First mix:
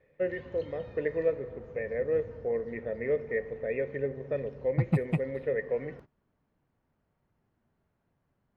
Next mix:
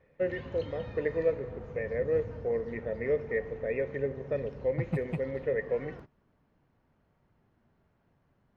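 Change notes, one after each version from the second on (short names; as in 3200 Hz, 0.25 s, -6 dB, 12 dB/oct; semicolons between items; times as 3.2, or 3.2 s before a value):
second voice -6.0 dB; background +6.0 dB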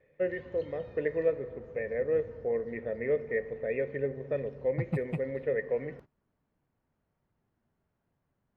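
background -9.0 dB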